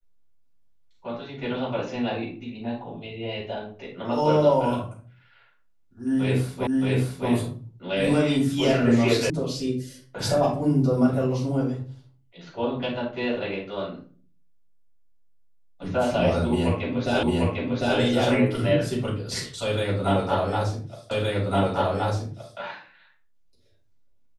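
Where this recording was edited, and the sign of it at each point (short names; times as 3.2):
6.67 repeat of the last 0.62 s
9.3 sound cut off
17.23 repeat of the last 0.75 s
21.11 repeat of the last 1.47 s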